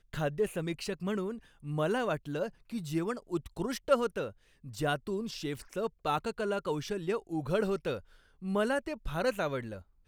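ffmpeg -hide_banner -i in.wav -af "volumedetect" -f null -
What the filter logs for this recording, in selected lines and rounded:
mean_volume: -33.7 dB
max_volume: -12.0 dB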